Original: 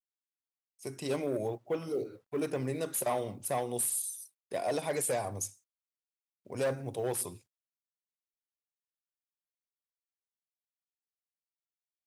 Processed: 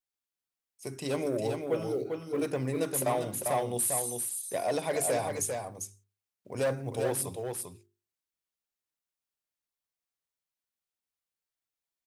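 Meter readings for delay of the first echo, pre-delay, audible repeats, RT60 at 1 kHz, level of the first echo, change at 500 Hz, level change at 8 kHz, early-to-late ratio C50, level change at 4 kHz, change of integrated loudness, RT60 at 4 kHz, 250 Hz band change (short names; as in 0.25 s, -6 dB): 0.397 s, none, 1, none, -5.0 dB, +3.0 dB, +3.0 dB, none, +3.0 dB, +2.5 dB, none, +3.0 dB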